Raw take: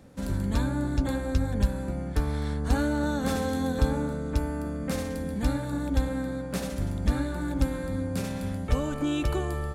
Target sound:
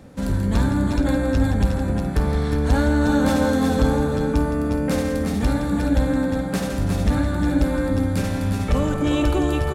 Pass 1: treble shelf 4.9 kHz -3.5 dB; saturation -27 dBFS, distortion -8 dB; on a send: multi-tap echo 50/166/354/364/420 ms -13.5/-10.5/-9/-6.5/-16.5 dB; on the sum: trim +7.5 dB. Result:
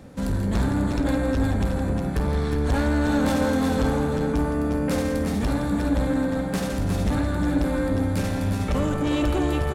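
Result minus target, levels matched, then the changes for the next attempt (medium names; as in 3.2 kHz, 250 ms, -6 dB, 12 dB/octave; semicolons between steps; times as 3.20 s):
saturation: distortion +8 dB
change: saturation -18.5 dBFS, distortion -16 dB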